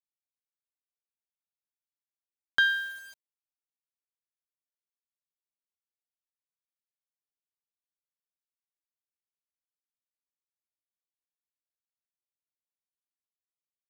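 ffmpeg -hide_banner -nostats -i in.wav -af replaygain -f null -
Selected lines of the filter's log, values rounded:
track_gain = +64.0 dB
track_peak = 0.137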